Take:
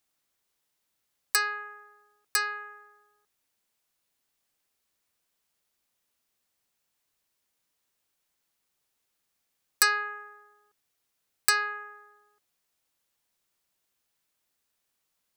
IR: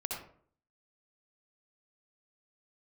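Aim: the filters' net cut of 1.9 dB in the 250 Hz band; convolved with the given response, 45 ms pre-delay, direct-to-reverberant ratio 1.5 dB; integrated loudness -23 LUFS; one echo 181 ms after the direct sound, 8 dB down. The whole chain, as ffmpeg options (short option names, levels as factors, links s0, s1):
-filter_complex "[0:a]equalizer=f=250:t=o:g=-5,aecho=1:1:181:0.398,asplit=2[s0][s1];[1:a]atrim=start_sample=2205,adelay=45[s2];[s1][s2]afir=irnorm=-1:irlink=0,volume=0.668[s3];[s0][s3]amix=inputs=2:normalize=0,volume=1.41"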